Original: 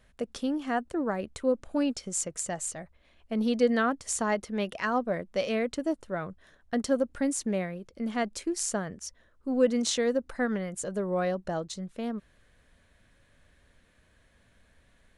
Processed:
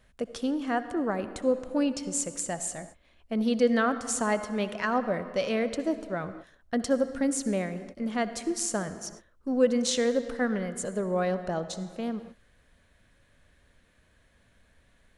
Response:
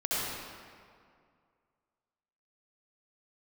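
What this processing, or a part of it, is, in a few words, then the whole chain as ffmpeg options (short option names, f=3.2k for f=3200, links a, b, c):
keyed gated reverb: -filter_complex "[0:a]asplit=3[a][b][c];[1:a]atrim=start_sample=2205[d];[b][d]afir=irnorm=-1:irlink=0[e];[c]apad=whole_len=669120[f];[e][f]sidechaingate=range=-33dB:threshold=-50dB:ratio=16:detection=peak,volume=-19.5dB[g];[a][g]amix=inputs=2:normalize=0"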